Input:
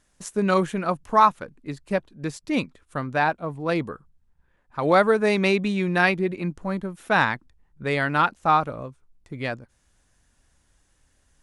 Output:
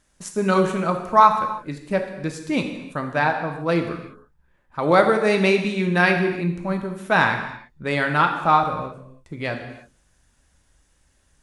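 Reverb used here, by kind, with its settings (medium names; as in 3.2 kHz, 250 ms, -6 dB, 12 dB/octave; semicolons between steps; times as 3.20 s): gated-style reverb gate 360 ms falling, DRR 4 dB; trim +1 dB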